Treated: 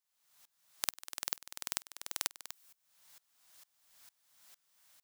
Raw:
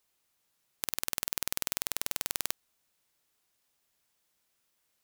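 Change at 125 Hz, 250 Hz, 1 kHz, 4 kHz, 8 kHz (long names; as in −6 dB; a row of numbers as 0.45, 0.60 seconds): −11.5, −12.5, −4.5, −4.0, −5.0 decibels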